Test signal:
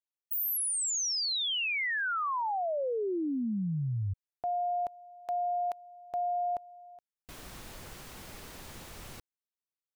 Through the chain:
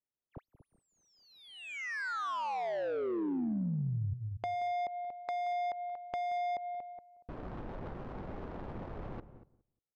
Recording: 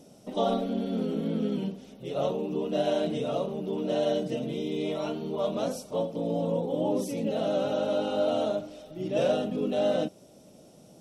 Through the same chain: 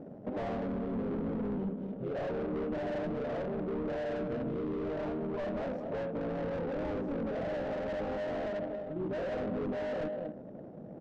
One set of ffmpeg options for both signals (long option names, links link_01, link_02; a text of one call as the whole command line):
ffmpeg -i in.wav -filter_complex "[0:a]asplit=2[link_01][link_02];[link_02]highpass=frequency=720:poles=1,volume=14dB,asoftclip=type=tanh:threshold=-14dB[link_03];[link_01][link_03]amix=inputs=2:normalize=0,lowpass=frequency=1100:poles=1,volume=-6dB,asplit=2[link_04][link_05];[link_05]aecho=0:1:235:0.224[link_06];[link_04][link_06]amix=inputs=2:normalize=0,volume=29dB,asoftclip=hard,volume=-29dB,lowshelf=frequency=290:gain=9,acompressor=threshold=-38dB:ratio=2.5:attack=8.3:release=185:knee=1:detection=peak,asplit=2[link_07][link_08];[link_08]adelay=178,lowpass=frequency=2100:poles=1,volume=-16dB,asplit=2[link_09][link_10];[link_10]adelay=178,lowpass=frequency=2100:poles=1,volume=0.21[link_11];[link_09][link_11]amix=inputs=2:normalize=0[link_12];[link_07][link_12]amix=inputs=2:normalize=0,adynamicsmooth=sensitivity=4.5:basefreq=620,volume=2dB" out.wav